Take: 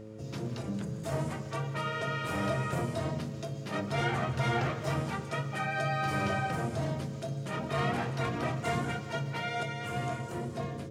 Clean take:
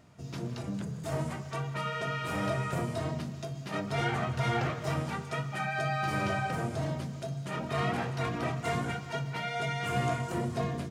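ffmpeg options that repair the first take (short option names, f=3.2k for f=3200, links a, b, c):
-af "bandreject=f=108.1:t=h:w=4,bandreject=f=216.2:t=h:w=4,bandreject=f=324.3:t=h:w=4,bandreject=f=432.4:t=h:w=4,bandreject=f=540.5:t=h:w=4,asetnsamples=n=441:p=0,asendcmd='9.63 volume volume 4.5dB',volume=0dB"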